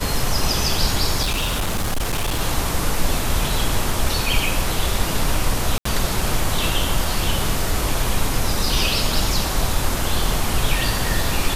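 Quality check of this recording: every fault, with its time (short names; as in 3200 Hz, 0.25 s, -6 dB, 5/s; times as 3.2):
1.22–2.41 clipped -17.5 dBFS
5.78–5.85 gap 74 ms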